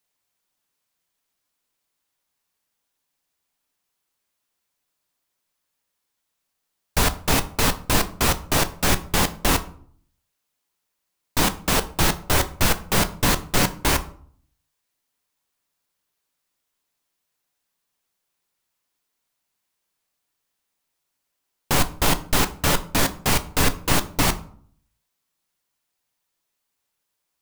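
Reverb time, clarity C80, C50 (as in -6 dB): 0.55 s, 20.5 dB, 16.5 dB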